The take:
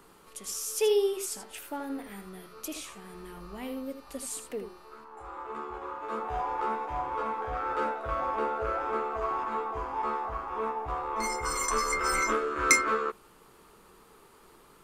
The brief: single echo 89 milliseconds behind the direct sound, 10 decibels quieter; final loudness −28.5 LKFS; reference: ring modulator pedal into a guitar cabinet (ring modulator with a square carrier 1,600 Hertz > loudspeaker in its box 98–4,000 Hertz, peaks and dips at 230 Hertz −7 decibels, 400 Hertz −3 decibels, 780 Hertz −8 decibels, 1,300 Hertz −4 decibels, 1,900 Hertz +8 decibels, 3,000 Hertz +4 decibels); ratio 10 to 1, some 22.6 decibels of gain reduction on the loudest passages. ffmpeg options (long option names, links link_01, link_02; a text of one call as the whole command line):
ffmpeg -i in.wav -af "acompressor=threshold=-40dB:ratio=10,aecho=1:1:89:0.316,aeval=exprs='val(0)*sgn(sin(2*PI*1600*n/s))':channel_layout=same,highpass=98,equalizer=frequency=230:width_type=q:width=4:gain=-7,equalizer=frequency=400:width_type=q:width=4:gain=-3,equalizer=frequency=780:width_type=q:width=4:gain=-8,equalizer=frequency=1300:width_type=q:width=4:gain=-4,equalizer=frequency=1900:width_type=q:width=4:gain=8,equalizer=frequency=3000:width_type=q:width=4:gain=4,lowpass=frequency=4000:width=0.5412,lowpass=frequency=4000:width=1.3066,volume=12dB" out.wav